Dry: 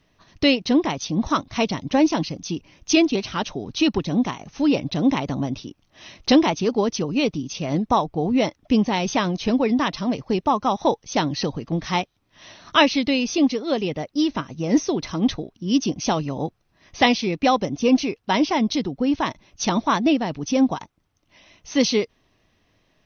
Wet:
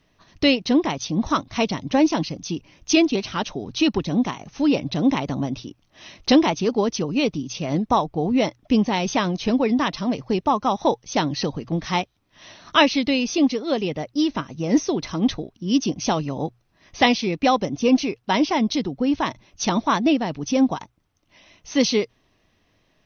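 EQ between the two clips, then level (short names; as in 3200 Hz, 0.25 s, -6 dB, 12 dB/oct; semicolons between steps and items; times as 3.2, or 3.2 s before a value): notches 60/120 Hz; 0.0 dB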